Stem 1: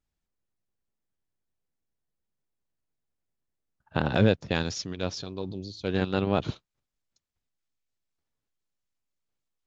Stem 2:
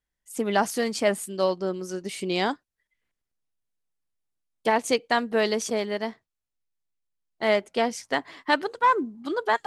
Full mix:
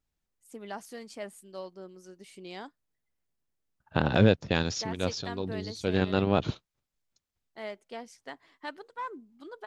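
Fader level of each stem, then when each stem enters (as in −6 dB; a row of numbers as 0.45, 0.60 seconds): +0.5, −17.0 decibels; 0.00, 0.15 seconds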